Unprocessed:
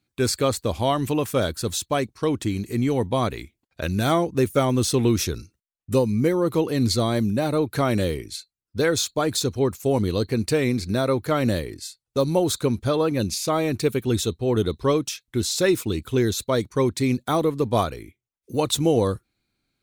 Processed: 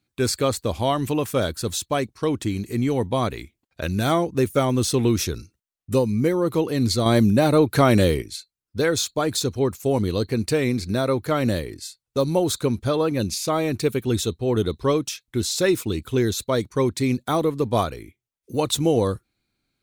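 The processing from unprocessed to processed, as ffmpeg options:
ffmpeg -i in.wav -filter_complex "[0:a]asplit=3[link_01][link_02][link_03];[link_01]atrim=end=7.062[link_04];[link_02]atrim=start=7.058:end=8.222,asetpts=PTS-STARTPTS,volume=5.5dB[link_05];[link_03]atrim=start=8.218[link_06];[link_04][link_05]acrossfade=duration=0.004:curve1=hsin:curve2=hsin[link_07];[link_07][link_06]acrossfade=duration=0.004:curve1=hsin:curve2=hsin" out.wav

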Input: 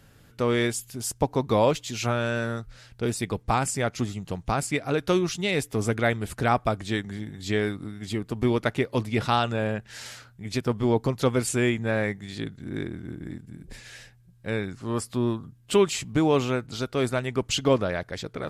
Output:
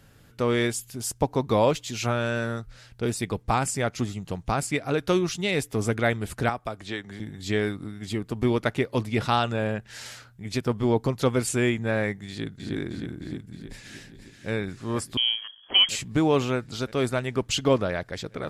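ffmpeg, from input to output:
ffmpeg -i in.wav -filter_complex "[0:a]asettb=1/sr,asplit=3[link_01][link_02][link_03];[link_01]atrim=end=6.494[link_04];[link_02]atrim=start=6.49:end=7.2,asetpts=PTS-STARTPTS,afade=type=in:duration=0.004:curve=qsin,afade=type=out:start_time=0.706:duration=0.004:curve=qsin,acrossover=split=340|5500[link_05][link_06][link_07];[link_05]acompressor=threshold=-40dB:ratio=4[link_08];[link_06]acompressor=threshold=-29dB:ratio=4[link_09];[link_07]acompressor=threshold=-59dB:ratio=4[link_10];[link_08][link_09][link_10]amix=inputs=3:normalize=0[link_11];[link_03]atrim=start=7.196[link_12];[link_04][link_11]acrossfade=duration=0.004:curve1=hsin:curve2=qsin[link_13];[link_13][link_12]acrossfade=duration=0.004:curve1=qsin:curve2=hsin,asplit=2[link_14][link_15];[link_15]afade=type=in:start_time=12.28:duration=0.01,afade=type=out:start_time=12.74:duration=0.01,aecho=0:1:310|620|930|1240|1550|1860|2170|2480|2790|3100:0.630957|0.410122|0.266579|0.173277|0.11263|0.0732094|0.0475861|0.030931|0.0201051|0.0130683[link_16];[link_14][link_16]amix=inputs=2:normalize=0,asplit=2[link_17][link_18];[link_18]afade=type=in:start_time=13.55:duration=0.01,afade=type=out:start_time=14.51:duration=0.01,aecho=0:1:480|960|1440|1920|2400|2880|3360|3840|4320|4800|5280|5760:0.375837|0.281878|0.211409|0.158556|0.118917|0.089188|0.066891|0.0501682|0.0376262|0.0282196|0.0211647|0.0158735[link_19];[link_17][link_19]amix=inputs=2:normalize=0,asettb=1/sr,asplit=3[link_20][link_21][link_22];[link_20]atrim=end=15.174[link_23];[link_21]atrim=start=15.17:end=15.89,asetpts=PTS-STARTPTS,afade=type=in:duration=0.004:curve=qsin,afade=type=out:start_time=0.716:duration=0.004:curve=qsin,lowpass=frequency=2900:width_type=q:width=0.5098,lowpass=frequency=2900:width_type=q:width=0.6013,lowpass=frequency=2900:width_type=q:width=0.9,lowpass=frequency=2900:width_type=q:width=2.563,afreqshift=-3400[link_24];[link_22]atrim=start=15.886[link_25];[link_23][link_24]acrossfade=duration=0.004:curve1=hsin:curve2=qsin[link_26];[link_26][link_25]acrossfade=duration=0.004:curve1=qsin:curve2=hsin" out.wav

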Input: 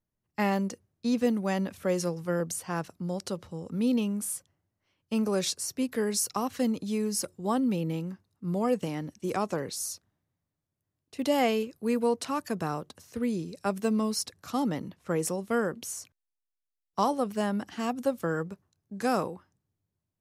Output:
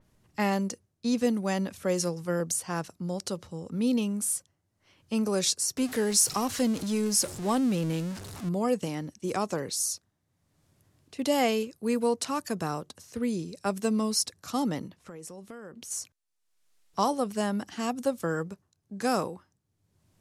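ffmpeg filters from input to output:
ffmpeg -i in.wav -filter_complex "[0:a]asettb=1/sr,asplit=3[link_01][link_02][link_03];[link_01]atrim=end=5.774[link_04];[link_02]atrim=start=5.77:end=8.49,asetpts=PTS-STARTPTS,afade=type=in:duration=0.004:curve=qsin,afade=type=out:start_time=2.716:duration=0.004:curve=qsin,aeval=exprs='val(0)+0.5*0.0158*sgn(val(0))':channel_layout=same[link_05];[link_03]atrim=start=8.486[link_06];[link_04][link_05]acrossfade=duration=0.004:curve1=hsin:curve2=qsin[link_07];[link_07][link_06]acrossfade=duration=0.004:curve1=qsin:curve2=hsin,asplit=3[link_08][link_09][link_10];[link_08]afade=type=out:start_time=14.86:duration=0.02[link_11];[link_09]acompressor=threshold=-41dB:ratio=6:attack=3.2:release=140:knee=1:detection=peak,afade=type=in:start_time=14.86:duration=0.02,afade=type=out:start_time=15.9:duration=0.02[link_12];[link_10]afade=type=in:start_time=15.9:duration=0.02[link_13];[link_11][link_12][link_13]amix=inputs=3:normalize=0,lowpass=11000,acompressor=mode=upward:threshold=-48dB:ratio=2.5,adynamicequalizer=threshold=0.00316:dfrequency=4200:dqfactor=0.7:tfrequency=4200:tqfactor=0.7:attack=5:release=100:ratio=0.375:range=3.5:mode=boostabove:tftype=highshelf" out.wav

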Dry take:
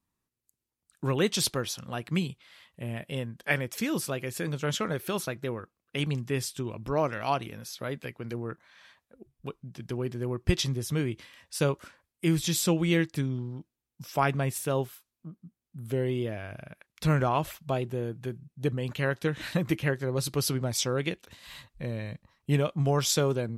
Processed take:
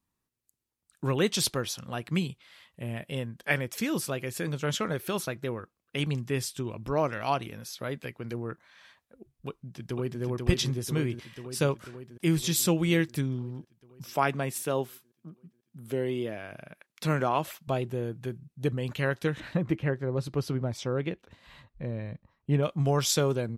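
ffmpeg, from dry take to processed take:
ffmpeg -i in.wav -filter_complex "[0:a]asplit=2[link_01][link_02];[link_02]afade=type=in:start_time=9.48:duration=0.01,afade=type=out:start_time=10.21:duration=0.01,aecho=0:1:490|980|1470|1960|2450|2940|3430|3920|4410|4900|5390|5880:0.707946|0.495562|0.346893|0.242825|0.169978|0.118984|0.0832891|0.0583024|0.0408117|0.0285682|0.0199977|0.0139984[link_03];[link_01][link_03]amix=inputs=2:normalize=0,asettb=1/sr,asplit=3[link_04][link_05][link_06];[link_04]atrim=end=12.564[link_07];[link_05]atrim=start=12.56:end=13.21,asetpts=PTS-STARTPTS,afade=type=in:duration=0.004:curve=qsin,afade=type=out:start_time=0.646:duration=0.004:curve=qsin,highshelf=frequency=12000:gain=10[link_08];[link_06]atrim=start=13.206[link_09];[link_07][link_08]acrossfade=duration=0.004:curve1=hsin:curve2=qsin[link_10];[link_10][link_09]acrossfade=duration=0.004:curve1=qsin:curve2=hsin,asettb=1/sr,asplit=3[link_11][link_12][link_13];[link_11]atrim=end=14.104[link_14];[link_12]atrim=start=14.1:end=17.68,asetpts=PTS-STARTPTS,afade=type=in:duration=0.004:curve=qsin,afade=type=out:start_time=3.576:duration=0.004:curve=qsin,highpass=170[link_15];[link_13]atrim=start=17.676[link_16];[link_14][link_15]acrossfade=duration=0.004:curve1=hsin:curve2=qsin[link_17];[link_17][link_16]acrossfade=duration=0.004:curve1=qsin:curve2=hsin,asettb=1/sr,asplit=3[link_18][link_19][link_20];[link_18]atrim=end=19.404[link_21];[link_19]atrim=start=19.4:end=22.63,asetpts=PTS-STARTPTS,afade=type=in:duration=0.004:curve=qsin,afade=type=out:start_time=3.226:duration=0.004:curve=qsin,lowpass=frequency=1200:poles=1[link_22];[link_20]atrim=start=22.626[link_23];[link_21][link_22]acrossfade=duration=0.004:curve1=hsin:curve2=qsin[link_24];[link_24][link_23]acrossfade=duration=0.004:curve1=qsin:curve2=hsin" out.wav

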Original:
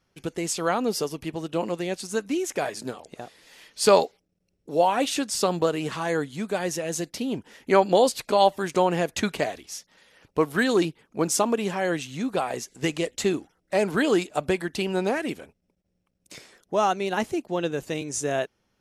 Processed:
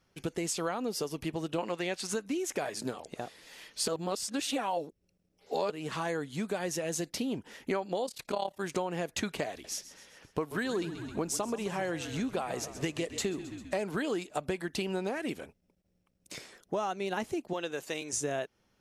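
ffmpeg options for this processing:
ffmpeg -i in.wav -filter_complex "[0:a]asettb=1/sr,asplit=3[link_01][link_02][link_03];[link_01]atrim=end=1.584[link_04];[link_02]atrim=start=1.58:end=2.14,asetpts=PTS-STARTPTS,afade=type=in:duration=0.004:curve=qsin,afade=type=out:start_time=0.556:duration=0.004:curve=qsin,equalizer=frequency=1800:width=0.34:gain=9.5[link_05];[link_03]atrim=start=2.136[link_06];[link_04][link_05]acrossfade=duration=0.004:curve1=hsin:curve2=qsin[link_07];[link_07][link_06]acrossfade=duration=0.004:curve1=qsin:curve2=hsin,asplit=3[link_08][link_09][link_10];[link_08]afade=type=out:start_time=8.05:duration=0.02[link_11];[link_09]tremolo=f=35:d=0.824,afade=type=in:start_time=8.05:duration=0.02,afade=type=out:start_time=8.59:duration=0.02[link_12];[link_10]afade=type=in:start_time=8.59:duration=0.02[link_13];[link_11][link_12][link_13]amix=inputs=3:normalize=0,asettb=1/sr,asplit=3[link_14][link_15][link_16];[link_14]atrim=end=9.514[link_17];[link_15]atrim=start=9.51:end=13.83,asetpts=PTS-STARTPTS,afade=type=in:duration=0.004:curve=qsin,afade=type=out:start_time=4.316:duration=0.004:curve=qsin,asplit=6[link_18][link_19][link_20][link_21][link_22][link_23];[link_19]adelay=132,afreqshift=-40,volume=-15dB[link_24];[link_20]adelay=264,afreqshift=-80,volume=-20.4dB[link_25];[link_21]adelay=396,afreqshift=-120,volume=-25.7dB[link_26];[link_22]adelay=528,afreqshift=-160,volume=-31.1dB[link_27];[link_23]adelay=660,afreqshift=-200,volume=-36.4dB[link_28];[link_18][link_24][link_25][link_26][link_27][link_28]amix=inputs=6:normalize=0,atrim=end_sample=190512[link_29];[link_16]atrim=start=13.826[link_30];[link_17][link_29]acrossfade=duration=0.004:curve1=hsin:curve2=qsin[link_31];[link_31][link_30]acrossfade=duration=0.004:curve1=qsin:curve2=hsin,asettb=1/sr,asplit=3[link_32][link_33][link_34];[link_32]atrim=end=17.534[link_35];[link_33]atrim=start=17.53:end=18.13,asetpts=PTS-STARTPTS,afade=type=in:duration=0.004:curve=qsin,afade=type=out:start_time=0.596:duration=0.004:curve=qsin,highpass=frequency=710:poles=1[link_36];[link_34]atrim=start=18.126[link_37];[link_35][link_36]acrossfade=duration=0.004:curve1=hsin:curve2=qsin[link_38];[link_38][link_37]acrossfade=duration=0.004:curve1=qsin:curve2=hsin,asplit=3[link_39][link_40][link_41];[link_39]atrim=end=3.882[link_42];[link_40]atrim=start=3.878:end=5.702,asetpts=PTS-STARTPTS,areverse[link_43];[link_41]atrim=start=5.698[link_44];[link_42][link_43]acrossfade=duration=0.004:curve1=hsin:curve2=hsin[link_45];[link_45][link_44]acrossfade=duration=0.004:curve1=hsin:curve2=hsin,acompressor=threshold=-30dB:ratio=6" out.wav

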